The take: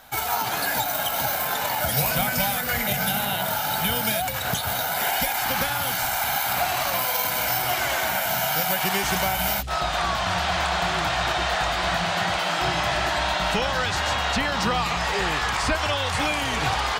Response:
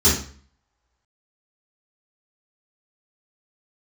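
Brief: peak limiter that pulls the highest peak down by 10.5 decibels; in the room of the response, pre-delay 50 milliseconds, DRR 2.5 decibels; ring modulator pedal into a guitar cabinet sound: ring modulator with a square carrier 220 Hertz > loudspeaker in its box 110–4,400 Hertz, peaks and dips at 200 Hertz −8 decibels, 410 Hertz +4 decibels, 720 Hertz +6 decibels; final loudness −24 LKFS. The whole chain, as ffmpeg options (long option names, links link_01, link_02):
-filter_complex "[0:a]alimiter=limit=-19.5dB:level=0:latency=1,asplit=2[link_01][link_02];[1:a]atrim=start_sample=2205,adelay=50[link_03];[link_02][link_03]afir=irnorm=-1:irlink=0,volume=-21dB[link_04];[link_01][link_04]amix=inputs=2:normalize=0,aeval=exprs='val(0)*sgn(sin(2*PI*220*n/s))':channel_layout=same,highpass=110,equalizer=frequency=200:width_type=q:width=4:gain=-8,equalizer=frequency=410:width_type=q:width=4:gain=4,equalizer=frequency=720:width_type=q:width=4:gain=6,lowpass=frequency=4400:width=0.5412,lowpass=frequency=4400:width=1.3066,volume=1dB"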